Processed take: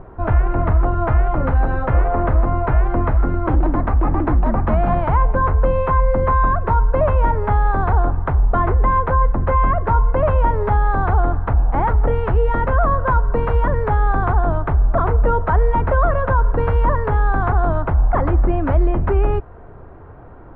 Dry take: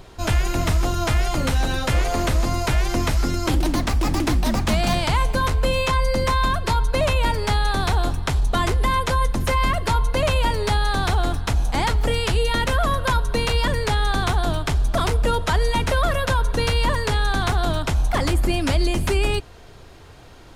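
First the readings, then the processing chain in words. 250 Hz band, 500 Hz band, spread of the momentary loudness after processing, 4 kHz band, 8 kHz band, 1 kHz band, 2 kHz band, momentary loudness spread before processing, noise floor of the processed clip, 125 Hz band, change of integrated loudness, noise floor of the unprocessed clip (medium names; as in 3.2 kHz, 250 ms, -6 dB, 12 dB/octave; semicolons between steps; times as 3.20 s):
+1.5 dB, +4.0 dB, 2 LU, under -20 dB, under -40 dB, +4.5 dB, -2.5 dB, 2 LU, -38 dBFS, +4.5 dB, +3.5 dB, -43 dBFS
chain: low-pass 1.4 kHz 24 dB/octave; dynamic bell 220 Hz, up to -5 dB, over -36 dBFS, Q 0.85; trim +5.5 dB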